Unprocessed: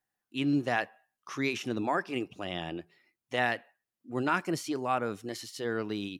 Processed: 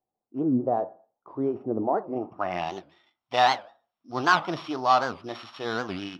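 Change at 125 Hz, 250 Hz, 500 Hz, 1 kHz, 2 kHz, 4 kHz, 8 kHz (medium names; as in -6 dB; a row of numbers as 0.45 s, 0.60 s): +0.5 dB, +2.5 dB, +5.5 dB, +9.0 dB, +3.0 dB, +5.5 dB, -2.0 dB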